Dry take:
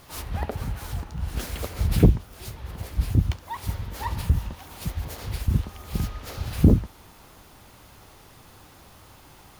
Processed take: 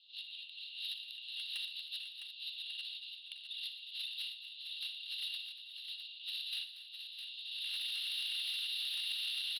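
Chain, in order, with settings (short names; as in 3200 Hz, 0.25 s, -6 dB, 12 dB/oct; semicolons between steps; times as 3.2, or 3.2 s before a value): recorder AGC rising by 31 dB/s; spectral gate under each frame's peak -15 dB weak; steep low-pass 4300 Hz 72 dB/oct; 5.36–6.25 compressor 5:1, threshold -34 dBFS, peak gain reduction 7 dB; rippled Chebyshev high-pass 2700 Hz, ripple 9 dB; soft clip -36.5 dBFS, distortion -12 dB; tapped delay 60/119/234/474/658 ms -12/-15/-13.5/-16.5/-7.5 dB; gain +1.5 dB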